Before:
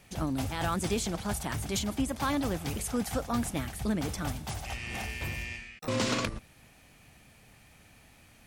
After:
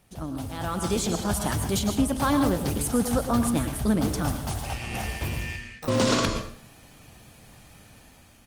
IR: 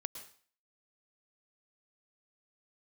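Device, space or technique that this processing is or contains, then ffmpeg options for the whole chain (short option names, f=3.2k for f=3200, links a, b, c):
speakerphone in a meeting room: -filter_complex "[0:a]equalizer=f=2.2k:t=o:w=0.68:g=-6,asplit=2[a][b];[b]adelay=74,lowpass=f=2.8k:p=1,volume=-24dB,asplit=2[c][d];[d]adelay=74,lowpass=f=2.8k:p=1,volume=0.16[e];[a][c][e]amix=inputs=3:normalize=0[f];[1:a]atrim=start_sample=2205[g];[f][g]afir=irnorm=-1:irlink=0,asplit=2[h][i];[i]adelay=100,highpass=300,lowpass=3.4k,asoftclip=type=hard:threshold=-28dB,volume=-26dB[j];[h][j]amix=inputs=2:normalize=0,dynaudnorm=f=370:g=5:m=9.5dB" -ar 48000 -c:a libopus -b:a 32k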